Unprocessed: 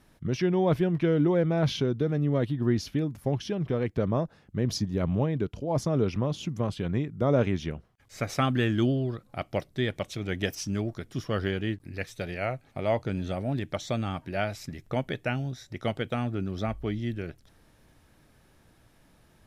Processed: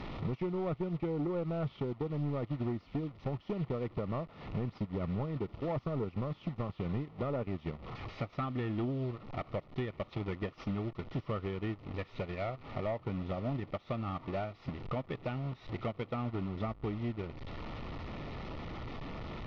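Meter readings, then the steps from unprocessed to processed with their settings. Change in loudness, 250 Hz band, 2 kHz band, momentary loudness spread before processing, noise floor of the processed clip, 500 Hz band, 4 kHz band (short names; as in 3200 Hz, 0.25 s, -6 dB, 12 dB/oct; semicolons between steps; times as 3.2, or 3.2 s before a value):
-9.0 dB, -8.5 dB, -11.0 dB, 9 LU, -58 dBFS, -8.5 dB, -13.5 dB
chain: delta modulation 32 kbps, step -34 dBFS; dynamic EQ 1200 Hz, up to +6 dB, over -52 dBFS, Q 4.6; transient shaper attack +9 dB, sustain -12 dB; compressor 3:1, threshold -27 dBFS, peak gain reduction 11 dB; soft clip -28.5 dBFS, distortion -8 dB; Butterworth band-stop 1600 Hz, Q 5; air absorption 360 m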